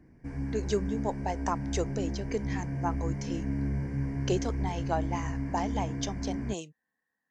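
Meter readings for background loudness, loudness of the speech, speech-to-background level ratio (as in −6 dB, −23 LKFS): −34.5 LKFS, −35.5 LKFS, −1.0 dB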